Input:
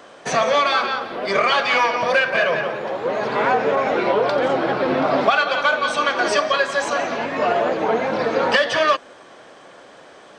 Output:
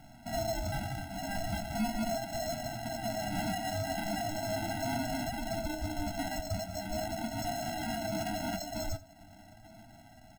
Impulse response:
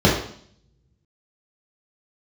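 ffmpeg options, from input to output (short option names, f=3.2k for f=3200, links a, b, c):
-filter_complex "[0:a]lowpass=f=2.1k:w=0.5412,lowpass=f=2.1k:w=1.3066,lowshelf=f=390:g=-7.5,acrossover=split=890[a][b];[b]acompressor=threshold=-36dB:ratio=6[c];[a][c]amix=inputs=2:normalize=0,alimiter=limit=-16dB:level=0:latency=1:release=187,acrusher=samples=37:mix=1:aa=0.000001,flanger=delay=8:depth=2.8:regen=55:speed=0.39:shape=triangular,asettb=1/sr,asplit=3[d][e][f];[d]atrim=end=7.624[g];[e]atrim=start=7.62:end=8.62,asetpts=PTS-STARTPTS,afade=t=in:d=0.004:c=qsin,afade=t=out:st=0.996:d=0.004:c=qsin,afreqshift=-14[h];[f]atrim=start=8.616[i];[g][h]acrossfade=d=0.004:c1=hsin:c2=qsin[j];[j][i]acrossfade=d=0.004:c1=qsin:c2=hsin,asoftclip=type=hard:threshold=-25dB,asplit=2[k][l];[l]aecho=0:1:84:0.112[m];[k][m]amix=inputs=2:normalize=0,afftfilt=real='re*eq(mod(floor(b*sr/1024/320),2),0)':imag='im*eq(mod(floor(b*sr/1024/320),2),0)':win_size=1024:overlap=0.75"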